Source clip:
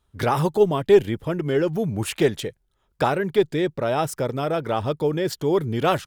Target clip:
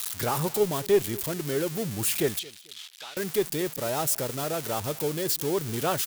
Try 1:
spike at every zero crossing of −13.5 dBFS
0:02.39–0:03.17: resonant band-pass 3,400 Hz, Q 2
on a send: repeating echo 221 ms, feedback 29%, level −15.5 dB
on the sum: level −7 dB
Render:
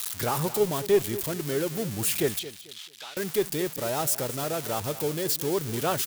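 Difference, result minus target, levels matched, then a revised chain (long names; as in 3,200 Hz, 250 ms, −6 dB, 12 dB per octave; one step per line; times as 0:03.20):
echo-to-direct +7 dB
spike at every zero crossing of −13.5 dBFS
0:02.39–0:03.17: resonant band-pass 3,400 Hz, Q 2
on a send: repeating echo 221 ms, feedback 29%, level −22.5 dB
on the sum: level −7 dB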